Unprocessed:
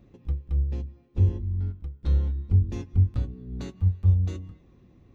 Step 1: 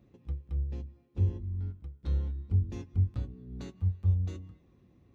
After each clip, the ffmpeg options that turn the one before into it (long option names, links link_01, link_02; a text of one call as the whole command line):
ffmpeg -i in.wav -af "highpass=52,volume=-6dB" out.wav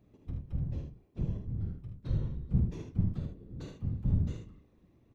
ffmpeg -i in.wav -filter_complex "[0:a]flanger=delay=9.8:depth=6:regen=-63:speed=0.39:shape=triangular,afftfilt=real='hypot(re,im)*cos(2*PI*random(0))':imag='hypot(re,im)*sin(2*PI*random(1))':win_size=512:overlap=0.75,asplit=2[link_01][link_02];[link_02]aecho=0:1:49|76:0.355|0.473[link_03];[link_01][link_03]amix=inputs=2:normalize=0,volume=7dB" out.wav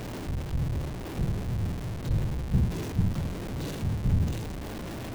ffmpeg -i in.wav -af "aeval=exprs='val(0)+0.5*0.0237*sgn(val(0))':channel_layout=same,equalizer=frequency=1300:width_type=o:width=0.28:gain=-3,volume=2dB" out.wav